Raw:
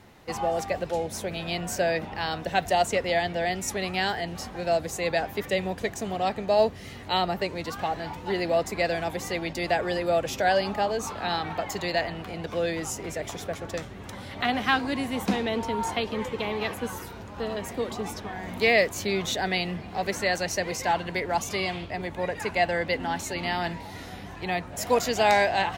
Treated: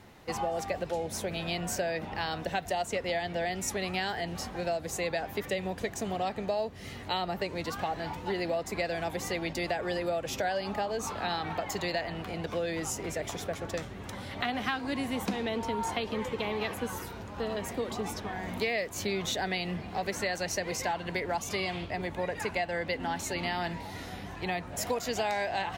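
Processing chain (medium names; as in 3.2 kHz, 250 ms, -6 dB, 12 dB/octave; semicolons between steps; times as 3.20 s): compression 6:1, threshold -27 dBFS, peak gain reduction 11 dB; trim -1 dB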